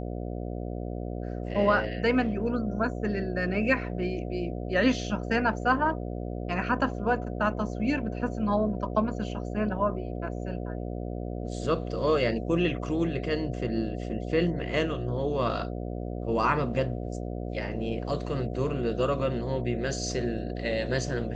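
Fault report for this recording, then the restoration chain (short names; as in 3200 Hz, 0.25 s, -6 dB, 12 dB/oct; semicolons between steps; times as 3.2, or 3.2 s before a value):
buzz 60 Hz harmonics 12 -34 dBFS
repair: de-hum 60 Hz, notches 12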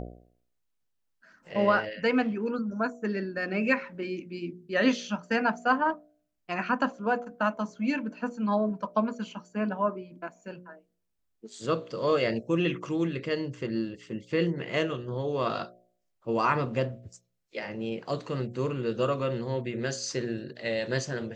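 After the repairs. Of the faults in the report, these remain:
none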